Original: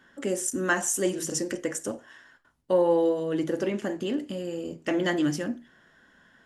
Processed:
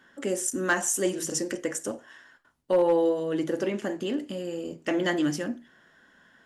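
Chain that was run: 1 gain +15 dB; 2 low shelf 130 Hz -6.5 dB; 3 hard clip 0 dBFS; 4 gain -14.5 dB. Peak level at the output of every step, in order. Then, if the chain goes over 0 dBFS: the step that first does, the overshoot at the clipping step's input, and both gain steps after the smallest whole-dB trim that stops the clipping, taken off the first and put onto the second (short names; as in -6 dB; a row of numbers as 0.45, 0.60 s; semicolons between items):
+4.0, +4.0, 0.0, -14.5 dBFS; step 1, 4.0 dB; step 1 +11 dB, step 4 -10.5 dB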